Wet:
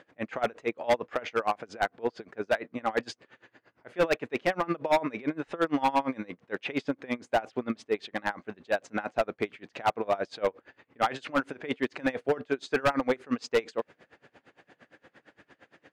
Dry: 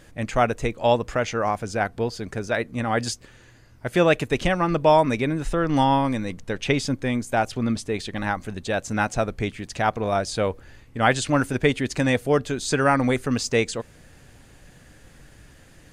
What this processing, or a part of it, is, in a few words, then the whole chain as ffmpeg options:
helicopter radio: -af "highpass=330,lowpass=2500,aeval=exprs='val(0)*pow(10,-26*(0.5-0.5*cos(2*PI*8.7*n/s))/20)':channel_layout=same,asoftclip=type=hard:threshold=-22dB,volume=4dB"

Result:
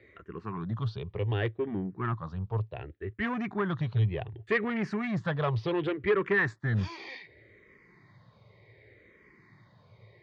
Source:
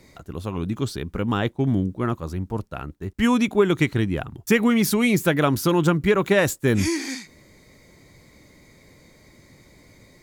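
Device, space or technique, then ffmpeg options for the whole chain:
barber-pole phaser into a guitar amplifier: -filter_complex "[0:a]asplit=2[link_01][link_02];[link_02]afreqshift=-0.67[link_03];[link_01][link_03]amix=inputs=2:normalize=1,asoftclip=type=tanh:threshold=-19dB,highpass=82,equalizer=frequency=110:width_type=q:width=4:gain=10,equalizer=frequency=260:width_type=q:width=4:gain=-9,equalizer=frequency=410:width_type=q:width=4:gain=6,equalizer=frequency=1100:width_type=q:width=4:gain=5,equalizer=frequency=1800:width_type=q:width=4:gain=8,lowpass=frequency=3600:width=0.5412,lowpass=frequency=3600:width=1.3066,volume=-5dB"

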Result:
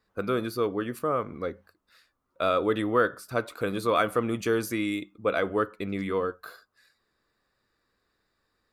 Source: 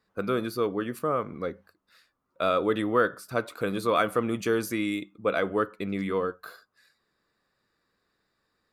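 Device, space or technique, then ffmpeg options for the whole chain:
low shelf boost with a cut just above: -af "lowshelf=frequency=73:gain=8,equalizer=frequency=170:width_type=o:width=0.57:gain=-4.5"

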